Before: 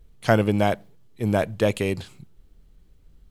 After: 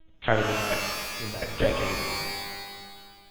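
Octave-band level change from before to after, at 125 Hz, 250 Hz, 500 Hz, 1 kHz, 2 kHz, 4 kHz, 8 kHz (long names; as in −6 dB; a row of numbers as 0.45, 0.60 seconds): −8.0, −9.5, −5.0, −2.0, +1.5, +6.5, +7.5 decibels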